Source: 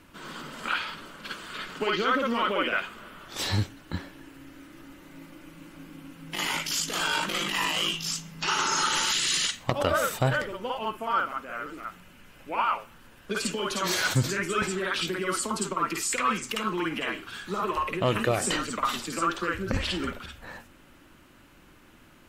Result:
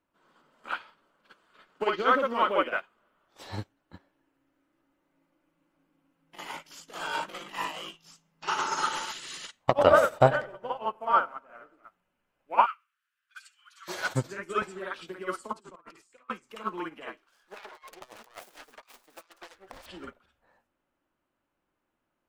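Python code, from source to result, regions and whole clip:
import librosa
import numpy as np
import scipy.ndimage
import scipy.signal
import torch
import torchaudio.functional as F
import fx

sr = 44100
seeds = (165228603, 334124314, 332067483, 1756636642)

y = fx.chain(x, sr, fx.high_shelf(hz=9400.0, db=-7.0),
    fx.echo_filtered(ms=96, feedback_pct=67, hz=2500.0, wet_db=-12.0), at=(9.69, 11.85))
y = fx.chain(y, sr, fx.steep_highpass(hz=1300.0, slope=48),
    fx.room_flutter(wall_m=11.7, rt60_s=0.32), at=(12.66, 13.88))
y = fx.chain(y, sr, fx.over_compress(threshold_db=-37.0, ratio=-1.0),
    fx.lowpass(hz=11000.0, slope=24), at=(15.53, 16.3))
y = fx.chain(y, sr, fx.self_delay(depth_ms=0.83),
    fx.peak_eq(hz=120.0, db=-15.0, octaves=2.8),
    fx.over_compress(threshold_db=-32.0, ratio=-0.5), at=(17.17, 19.86))
y = fx.peak_eq(y, sr, hz=710.0, db=11.0, octaves=2.2)
y = fx.upward_expand(y, sr, threshold_db=-34.0, expansion=2.5)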